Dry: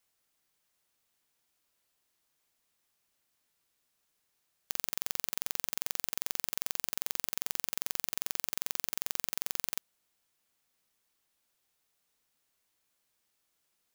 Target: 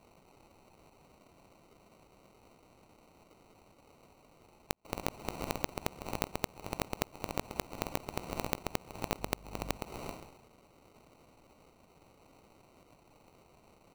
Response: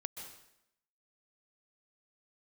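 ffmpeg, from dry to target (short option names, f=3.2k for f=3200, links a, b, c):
-filter_complex "[0:a]aecho=1:1:90|180|270|360|450|540:0.473|0.222|0.105|0.0491|0.0231|0.0109,asoftclip=type=tanh:threshold=-5.5dB,aemphasis=mode=production:type=50kf,asplit=2[a][b];[1:a]atrim=start_sample=2205,highshelf=f=9.9k:g=-10.5,adelay=20[c];[b][c]afir=irnorm=-1:irlink=0,volume=2.5dB[d];[a][d]amix=inputs=2:normalize=0,aeval=exprs='val(0)*sin(2*PI*410*n/s)':c=same,acrusher=samples=26:mix=1:aa=0.000001,asettb=1/sr,asplit=3[e][f][g];[e]atrim=end=9.194[h];[f]atrim=start=9.19:end=9.77,asetpts=PTS-STARTPTS,afade=t=in:d=0.004:c=qsin,afade=t=out:st=0.576:d=0.004:c=qsin,aeval=exprs='val(0)+0.0126*(sin(2*PI*50*n/s)+sin(2*PI*2*50*n/s)/2+sin(2*PI*3*50*n/s)/3+sin(2*PI*4*50*n/s)/4+sin(2*PI*5*50*n/s)/5)':c=same[i];[g]atrim=start=9.766[j];[h][i]acrossfade=d=0.004:c1=hsin:c2=qsin[k];[k][j]acrossfade=d=0.004:c1=qsin:c2=hsin,acompressor=threshold=-35dB:ratio=12,volume=5dB"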